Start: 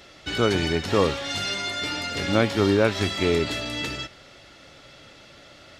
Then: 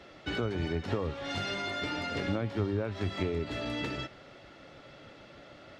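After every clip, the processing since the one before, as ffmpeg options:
ffmpeg -i in.wav -filter_complex "[0:a]lowpass=frequency=1400:poles=1,acrossover=split=120[link_01][link_02];[link_01]tremolo=f=6.5:d=0.91[link_03];[link_02]acompressor=threshold=-30dB:ratio=8[link_04];[link_03][link_04]amix=inputs=2:normalize=0" out.wav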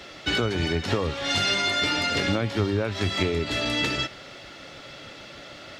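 ffmpeg -i in.wav -af "highshelf=frequency=2300:gain=12,volume=6dB" out.wav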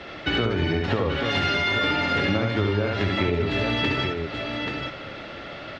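ffmpeg -i in.wav -af "lowpass=2700,aecho=1:1:69|833:0.668|0.422,acompressor=threshold=-28dB:ratio=2,volume=5dB" out.wav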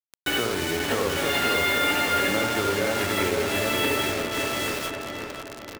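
ffmpeg -i in.wav -filter_complex "[0:a]bass=frequency=250:gain=-12,treble=frequency=4000:gain=-2,acrusher=bits=4:mix=0:aa=0.000001,asplit=2[link_01][link_02];[link_02]adelay=530,lowpass=frequency=1900:poles=1,volume=-3.5dB,asplit=2[link_03][link_04];[link_04]adelay=530,lowpass=frequency=1900:poles=1,volume=0.51,asplit=2[link_05][link_06];[link_06]adelay=530,lowpass=frequency=1900:poles=1,volume=0.51,asplit=2[link_07][link_08];[link_08]adelay=530,lowpass=frequency=1900:poles=1,volume=0.51,asplit=2[link_09][link_10];[link_10]adelay=530,lowpass=frequency=1900:poles=1,volume=0.51,asplit=2[link_11][link_12];[link_12]adelay=530,lowpass=frequency=1900:poles=1,volume=0.51,asplit=2[link_13][link_14];[link_14]adelay=530,lowpass=frequency=1900:poles=1,volume=0.51[link_15];[link_01][link_03][link_05][link_07][link_09][link_11][link_13][link_15]amix=inputs=8:normalize=0" out.wav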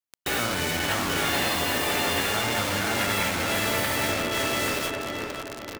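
ffmpeg -i in.wav -af "afftfilt=real='re*lt(hypot(re,im),0.224)':imag='im*lt(hypot(re,im),0.224)':win_size=1024:overlap=0.75,volume=2dB" out.wav

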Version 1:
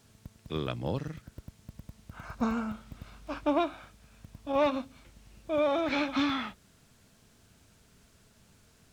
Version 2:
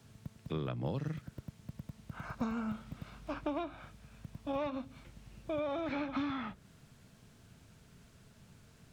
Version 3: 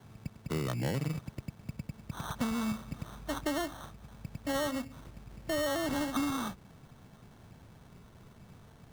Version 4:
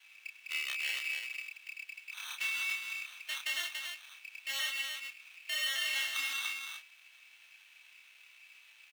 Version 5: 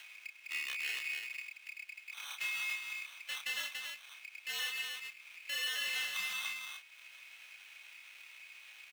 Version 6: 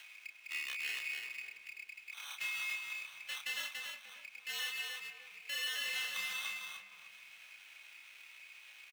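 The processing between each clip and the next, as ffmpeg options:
ffmpeg -i in.wav -filter_complex "[0:a]bass=frequency=250:gain=0,treble=frequency=4000:gain=-4,acrossover=split=140|2000[link_01][link_02][link_03];[link_01]acompressor=threshold=-51dB:ratio=4[link_04];[link_02]acompressor=threshold=-36dB:ratio=4[link_05];[link_03]acompressor=threshold=-54dB:ratio=4[link_06];[link_04][link_05][link_06]amix=inputs=3:normalize=0,equalizer=frequency=140:width=1.5:gain=6.5" out.wav
ffmpeg -i in.wav -filter_complex "[0:a]asplit=2[link_01][link_02];[link_02]alimiter=level_in=8dB:limit=-24dB:level=0:latency=1,volume=-8dB,volume=-2dB[link_03];[link_01][link_03]amix=inputs=2:normalize=0,acrusher=samples=18:mix=1:aa=0.000001" out.wav
ffmpeg -i in.wav -filter_complex "[0:a]highpass=frequency=2500:width_type=q:width=9,asplit=2[link_01][link_02];[link_02]aecho=0:1:29.15|285.7:0.708|0.631[link_03];[link_01][link_03]amix=inputs=2:normalize=0,volume=-1.5dB" out.wav
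ffmpeg -i in.wav -af "acompressor=mode=upward:threshold=-43dB:ratio=2.5,afreqshift=-87,asoftclip=type=tanh:threshold=-23dB,volume=-2dB" out.wav
ffmpeg -i in.wav -filter_complex "[0:a]asplit=2[link_01][link_02];[link_02]adelay=303,lowpass=frequency=820:poles=1,volume=-4dB,asplit=2[link_03][link_04];[link_04]adelay=303,lowpass=frequency=820:poles=1,volume=0.42,asplit=2[link_05][link_06];[link_06]adelay=303,lowpass=frequency=820:poles=1,volume=0.42,asplit=2[link_07][link_08];[link_08]adelay=303,lowpass=frequency=820:poles=1,volume=0.42,asplit=2[link_09][link_10];[link_10]adelay=303,lowpass=frequency=820:poles=1,volume=0.42[link_11];[link_01][link_03][link_05][link_07][link_09][link_11]amix=inputs=6:normalize=0,volume=-1.5dB" out.wav

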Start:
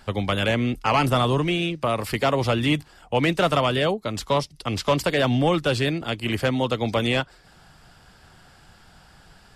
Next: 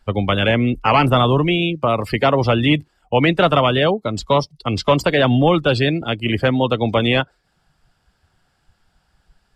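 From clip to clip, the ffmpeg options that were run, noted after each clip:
ffmpeg -i in.wav -af "afftdn=noise_reduction=19:noise_floor=-33,volume=6dB" out.wav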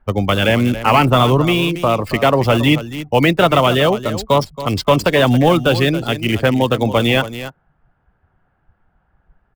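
ffmpeg -i in.wav -filter_complex "[0:a]aecho=1:1:276:0.224,acrossover=split=2000[link_01][link_02];[link_02]acrusher=bits=6:dc=4:mix=0:aa=0.000001[link_03];[link_01][link_03]amix=inputs=2:normalize=0,volume=2dB" out.wav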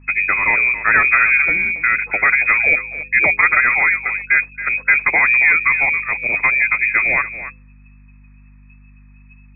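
ffmpeg -i in.wav -af "lowpass=frequency=2200:width_type=q:width=0.5098,lowpass=frequency=2200:width_type=q:width=0.6013,lowpass=frequency=2200:width_type=q:width=0.9,lowpass=frequency=2200:width_type=q:width=2.563,afreqshift=-2600,aeval=exprs='val(0)+0.00794*(sin(2*PI*50*n/s)+sin(2*PI*2*50*n/s)/2+sin(2*PI*3*50*n/s)/3+sin(2*PI*4*50*n/s)/4+sin(2*PI*5*50*n/s)/5)':channel_layout=same,bandreject=frequency=101.9:width_type=h:width=4,bandreject=frequency=203.8:width_type=h:width=4,bandreject=frequency=305.7:width_type=h:width=4,bandreject=frequency=407.6:width_type=h:width=4,bandreject=frequency=509.5:width_type=h:width=4,volume=-1dB" out.wav

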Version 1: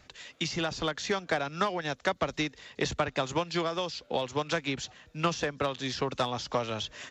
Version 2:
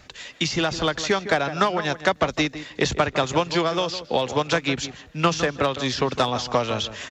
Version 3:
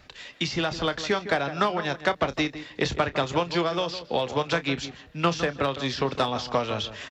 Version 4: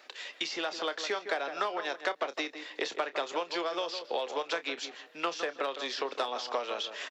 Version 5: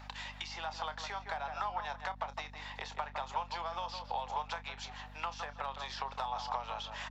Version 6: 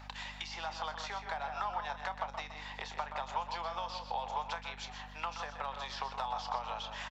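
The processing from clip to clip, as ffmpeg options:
ffmpeg -i in.wav -filter_complex "[0:a]asplit=2[link_01][link_02];[link_02]adelay=158,lowpass=frequency=2000:poles=1,volume=-11.5dB,asplit=2[link_03][link_04];[link_04]adelay=158,lowpass=frequency=2000:poles=1,volume=0.15[link_05];[link_01][link_03][link_05]amix=inputs=3:normalize=0,volume=8dB" out.wav
ffmpeg -i in.wav -filter_complex "[0:a]equalizer=frequency=6700:width=2.8:gain=-7,asplit=2[link_01][link_02];[link_02]adelay=29,volume=-13.5dB[link_03];[link_01][link_03]amix=inputs=2:normalize=0,volume=-3.5dB" out.wav
ffmpeg -i in.wav -af "acompressor=threshold=-33dB:ratio=2,highpass=frequency=360:width=0.5412,highpass=frequency=360:width=1.3066" out.wav
ffmpeg -i in.wav -af "acompressor=threshold=-41dB:ratio=3,highpass=frequency=860:width_type=q:width=5.1,aeval=exprs='val(0)+0.00355*(sin(2*PI*50*n/s)+sin(2*PI*2*50*n/s)/2+sin(2*PI*3*50*n/s)/3+sin(2*PI*4*50*n/s)/4+sin(2*PI*5*50*n/s)/5)':channel_layout=same,volume=-1.5dB" out.wav
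ffmpeg -i in.wav -af "aecho=1:1:125:0.316" out.wav

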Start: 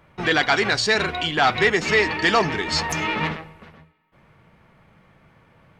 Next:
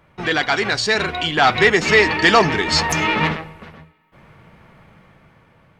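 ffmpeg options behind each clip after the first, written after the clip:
ffmpeg -i in.wav -af "dynaudnorm=framelen=530:gausssize=5:maxgain=11.5dB" out.wav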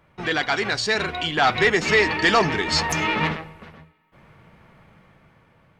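ffmpeg -i in.wav -af "apsyclip=5dB,volume=-9dB" out.wav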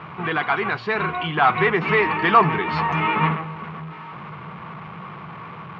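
ffmpeg -i in.wav -af "aeval=exprs='val(0)+0.5*0.0237*sgn(val(0))':channel_layout=same,highpass=140,equalizer=frequency=160:width_type=q:width=4:gain=6,equalizer=frequency=270:width_type=q:width=4:gain=-7,equalizer=frequency=560:width_type=q:width=4:gain=-8,equalizer=frequency=1100:width_type=q:width=4:gain=9,equalizer=frequency=1800:width_type=q:width=4:gain=-5,lowpass=frequency=2600:width=0.5412,lowpass=frequency=2600:width=1.3066,volume=1dB" out.wav

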